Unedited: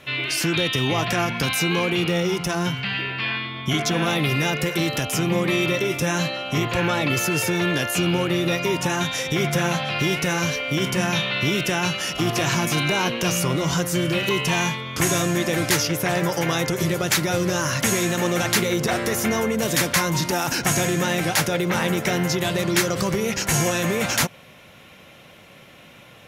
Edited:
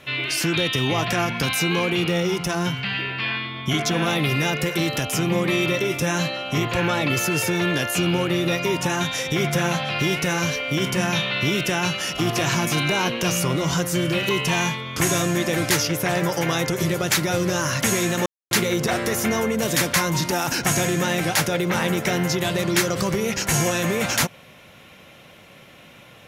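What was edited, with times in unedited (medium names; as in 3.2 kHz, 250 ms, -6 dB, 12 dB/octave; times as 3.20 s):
18.26–18.51 s: mute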